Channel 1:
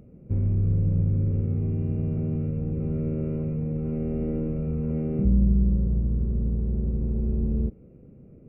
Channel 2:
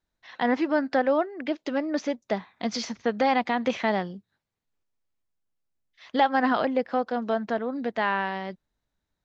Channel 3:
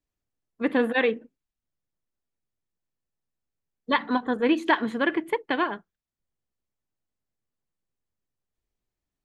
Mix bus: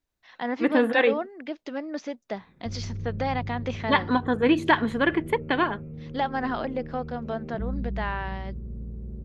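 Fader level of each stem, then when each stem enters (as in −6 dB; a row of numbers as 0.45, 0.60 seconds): −11.0, −5.5, +1.5 decibels; 2.35, 0.00, 0.00 seconds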